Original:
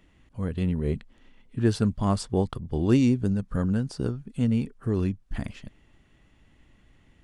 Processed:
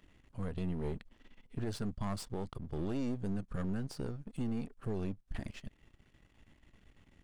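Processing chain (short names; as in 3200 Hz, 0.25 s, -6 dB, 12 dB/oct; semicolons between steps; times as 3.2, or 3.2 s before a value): half-wave gain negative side -12 dB; compressor 1.5:1, threshold -38 dBFS, peak gain reduction 7.5 dB; limiter -26.5 dBFS, peak gain reduction 7.5 dB; gain -1 dB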